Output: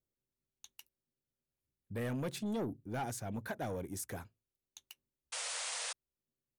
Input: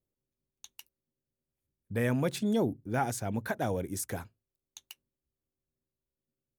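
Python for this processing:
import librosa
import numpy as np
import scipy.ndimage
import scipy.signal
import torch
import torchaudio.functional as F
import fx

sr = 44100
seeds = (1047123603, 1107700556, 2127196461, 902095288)

y = 10.0 ** (-27.0 / 20.0) * np.tanh(x / 10.0 ** (-27.0 / 20.0))
y = fx.spec_paint(y, sr, seeds[0], shape='noise', start_s=5.32, length_s=0.61, low_hz=450.0, high_hz=9900.0, level_db=-35.0)
y = F.gain(torch.from_numpy(y), -5.0).numpy()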